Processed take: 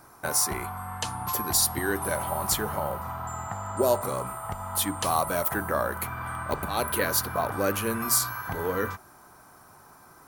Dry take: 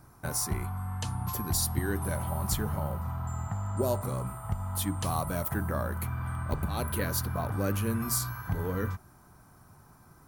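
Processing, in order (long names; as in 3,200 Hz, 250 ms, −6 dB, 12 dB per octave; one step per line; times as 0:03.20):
bass and treble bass −15 dB, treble −1 dB
level +8 dB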